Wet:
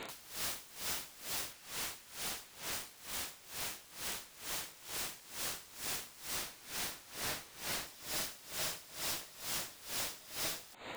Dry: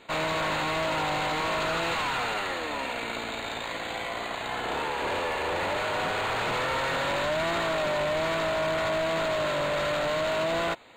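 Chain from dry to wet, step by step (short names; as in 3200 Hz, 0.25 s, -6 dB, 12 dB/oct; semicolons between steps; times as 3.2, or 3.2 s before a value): 1.53–2.72 low shelf 460 Hz +10.5 dB; 6.36–7.87 Bessel low-pass 1900 Hz, order 4; limiter -32 dBFS, peak gain reduction 15 dB; wrapped overs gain 42 dB; dB-linear tremolo 2.2 Hz, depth 20 dB; gain +8.5 dB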